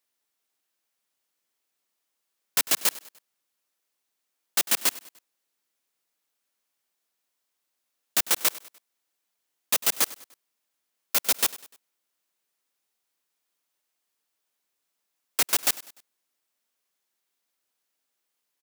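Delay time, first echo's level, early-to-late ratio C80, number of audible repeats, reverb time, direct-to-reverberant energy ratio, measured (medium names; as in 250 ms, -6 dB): 99 ms, -18.5 dB, no reverb, 3, no reverb, no reverb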